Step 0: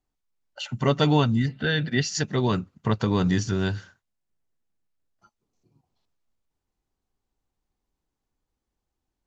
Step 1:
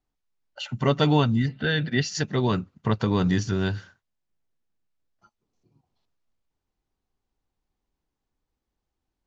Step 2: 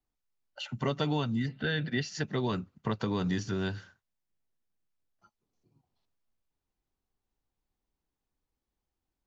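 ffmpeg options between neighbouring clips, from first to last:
ffmpeg -i in.wav -af "lowpass=6200" out.wav
ffmpeg -i in.wav -filter_complex "[0:a]acrossover=split=150|3600[link_01][link_02][link_03];[link_01]acompressor=threshold=-35dB:ratio=4[link_04];[link_02]acompressor=threshold=-23dB:ratio=4[link_05];[link_03]acompressor=threshold=-39dB:ratio=4[link_06];[link_04][link_05][link_06]amix=inputs=3:normalize=0,volume=-4.5dB" out.wav

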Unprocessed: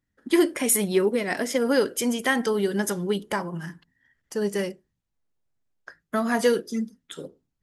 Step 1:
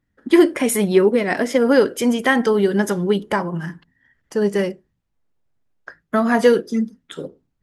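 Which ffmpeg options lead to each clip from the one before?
ffmpeg -i in.wav -af "highshelf=frequency=4200:gain=-11.5,volume=7.5dB" out.wav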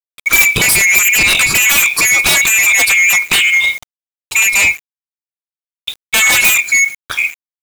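ffmpeg -i in.wav -filter_complex "[0:a]afftfilt=real='real(if(lt(b,920),b+92*(1-2*mod(floor(b/92),2)),b),0)':imag='imag(if(lt(b,920),b+92*(1-2*mod(floor(b/92),2)),b),0)':win_size=2048:overlap=0.75,asplit=2[link_01][link_02];[link_02]aeval=exprs='0.794*sin(PI/2*7.94*val(0)/0.794)':channel_layout=same,volume=-6dB[link_03];[link_01][link_03]amix=inputs=2:normalize=0,acrusher=bits=4:mix=0:aa=0.000001,volume=-1dB" out.wav

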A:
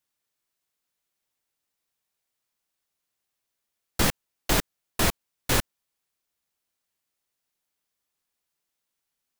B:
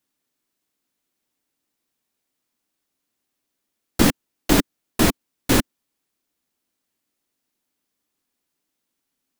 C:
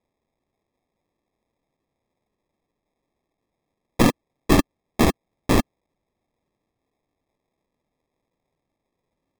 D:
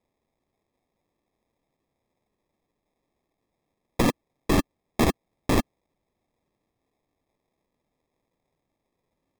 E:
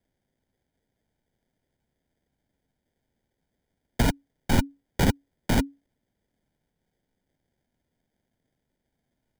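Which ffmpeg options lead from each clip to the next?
ffmpeg -i in.wav -af "equalizer=frequency=270:width_type=o:width=0.98:gain=12,volume=3dB" out.wav
ffmpeg -i in.wav -af "acrusher=samples=30:mix=1:aa=0.000001" out.wav
ffmpeg -i in.wav -af "alimiter=limit=-13dB:level=0:latency=1:release=46" out.wav
ffmpeg -i in.wav -af "afreqshift=-280" out.wav

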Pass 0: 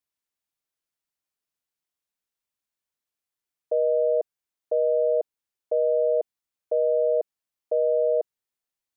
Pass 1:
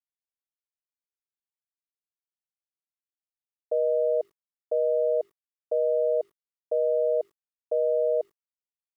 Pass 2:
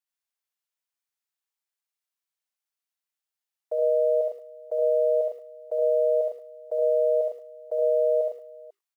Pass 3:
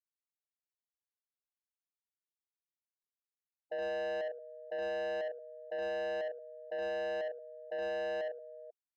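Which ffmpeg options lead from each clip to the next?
ffmpeg -i in.wav -af "bandreject=frequency=50:width_type=h:width=6,bandreject=frequency=100:width_type=h:width=6,bandreject=frequency=150:width_type=h:width=6,bandreject=frequency=200:width_type=h:width=6,bandreject=frequency=250:width_type=h:width=6,bandreject=frequency=300:width_type=h:width=6,bandreject=frequency=350:width_type=h:width=6,bandreject=frequency=400:width_type=h:width=6,acrusher=bits=10:mix=0:aa=0.000001,volume=-2dB" out.wav
ffmpeg -i in.wav -filter_complex "[0:a]highpass=710,asplit=2[link_01][link_02];[link_02]aecho=0:1:69|106|176|493:0.708|0.562|0.178|0.119[link_03];[link_01][link_03]amix=inputs=2:normalize=0,volume=3.5dB" out.wav
ffmpeg -i in.wav -af "afftfilt=real='re*gte(hypot(re,im),0.00891)':imag='im*gte(hypot(re,im),0.00891)':win_size=1024:overlap=0.75,asoftclip=type=tanh:threshold=-29dB,volume=-5dB" out.wav

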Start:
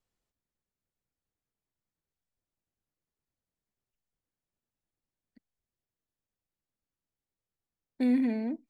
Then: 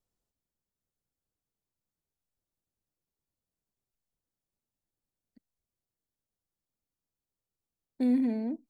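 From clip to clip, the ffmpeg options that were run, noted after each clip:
ffmpeg -i in.wav -af "equalizer=frequency=2200:width_type=o:width=1.6:gain=-8" out.wav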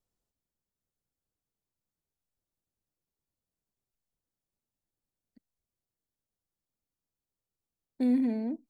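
ffmpeg -i in.wav -af anull out.wav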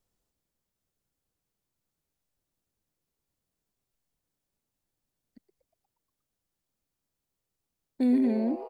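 ffmpeg -i in.wav -filter_complex "[0:a]asplit=2[link_01][link_02];[link_02]alimiter=level_in=5.5dB:limit=-24dB:level=0:latency=1,volume=-5.5dB,volume=-1dB[link_03];[link_01][link_03]amix=inputs=2:normalize=0,asplit=8[link_04][link_05][link_06][link_07][link_08][link_09][link_10][link_11];[link_05]adelay=119,afreqshift=140,volume=-15dB[link_12];[link_06]adelay=238,afreqshift=280,volume=-19dB[link_13];[link_07]adelay=357,afreqshift=420,volume=-23dB[link_14];[link_08]adelay=476,afreqshift=560,volume=-27dB[link_15];[link_09]adelay=595,afreqshift=700,volume=-31.1dB[link_16];[link_10]adelay=714,afreqshift=840,volume=-35.1dB[link_17];[link_11]adelay=833,afreqshift=980,volume=-39.1dB[link_18];[link_04][link_12][link_13][link_14][link_15][link_16][link_17][link_18]amix=inputs=8:normalize=0" out.wav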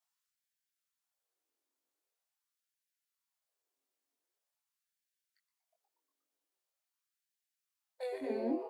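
ffmpeg -i in.wav -af "flanger=delay=18.5:depth=3.6:speed=0.42,afftfilt=real='re*gte(b*sr/1024,220*pow(1500/220,0.5+0.5*sin(2*PI*0.44*pts/sr)))':imag='im*gte(b*sr/1024,220*pow(1500/220,0.5+0.5*sin(2*PI*0.44*pts/sr)))':win_size=1024:overlap=0.75" out.wav

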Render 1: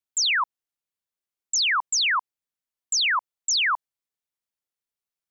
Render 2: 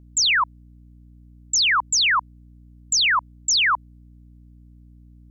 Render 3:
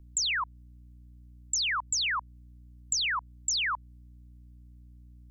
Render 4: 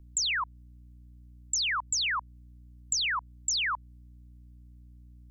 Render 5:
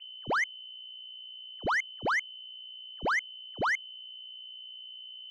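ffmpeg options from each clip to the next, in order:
ffmpeg -i in.wav -af "aeval=exprs='val(0)+0.00316*(sin(2*PI*60*n/s)+sin(2*PI*2*60*n/s)/2+sin(2*PI*3*60*n/s)/3+sin(2*PI*4*60*n/s)/4+sin(2*PI*5*60*n/s)/5)':channel_layout=same,volume=3.5dB" out.wav
ffmpeg -i in.wav -filter_complex "[0:a]equalizer=frequency=290:width=0.31:gain=-8,acrossover=split=240[link_01][link_02];[link_02]acompressor=threshold=-28dB:ratio=6[link_03];[link_01][link_03]amix=inputs=2:normalize=0" out.wav
ffmpeg -i in.wav -af anull out.wav
ffmpeg -i in.wav -af "lowpass=frequency=2600:width_type=q:width=0.5098,lowpass=frequency=2600:width_type=q:width=0.6013,lowpass=frequency=2600:width_type=q:width=0.9,lowpass=frequency=2600:width_type=q:width=2.563,afreqshift=-3100,asoftclip=type=tanh:threshold=-29.5dB,volume=5.5dB" out.wav

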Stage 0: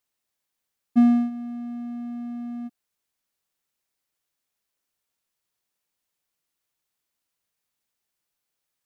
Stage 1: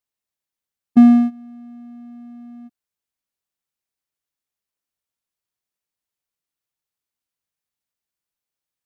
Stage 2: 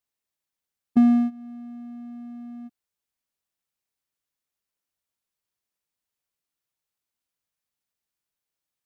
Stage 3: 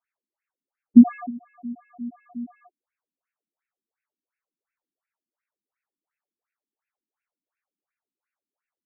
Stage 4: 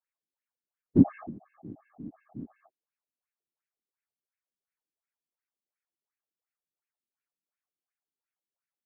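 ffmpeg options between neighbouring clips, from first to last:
ffmpeg -i in.wav -af "equalizer=frequency=74:width=0.6:gain=4,agate=range=-13dB:threshold=-25dB:ratio=16:detection=peak,volume=6.5dB" out.wav
ffmpeg -i in.wav -af "acompressor=threshold=-27dB:ratio=1.5" out.wav
ffmpeg -i in.wav -af "afftfilt=real='re*between(b*sr/1024,240*pow(2000/240,0.5+0.5*sin(2*PI*2.8*pts/sr))/1.41,240*pow(2000/240,0.5+0.5*sin(2*PI*2.8*pts/sr))*1.41)':imag='im*between(b*sr/1024,240*pow(2000/240,0.5+0.5*sin(2*PI*2.8*pts/sr))/1.41,240*pow(2000/240,0.5+0.5*sin(2*PI*2.8*pts/sr))*1.41)':win_size=1024:overlap=0.75,volume=8.5dB" out.wav
ffmpeg -i in.wav -af "afftfilt=real='hypot(re,im)*cos(2*PI*random(0))':imag='hypot(re,im)*sin(2*PI*random(1))':win_size=512:overlap=0.75,volume=-2.5dB" out.wav

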